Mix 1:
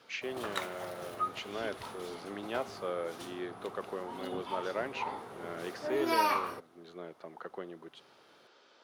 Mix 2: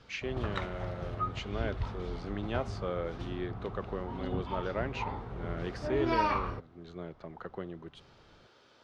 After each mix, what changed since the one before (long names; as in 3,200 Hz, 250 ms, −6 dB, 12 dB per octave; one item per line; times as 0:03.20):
background: add high-frequency loss of the air 170 metres
master: remove high-pass filter 310 Hz 12 dB per octave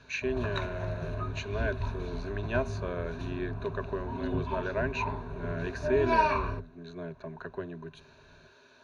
speech: add parametric band 1,700 Hz +4 dB 0.51 octaves
master: add EQ curve with evenly spaced ripples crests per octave 1.5, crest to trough 14 dB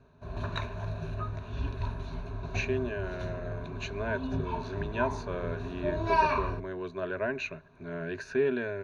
speech: entry +2.45 s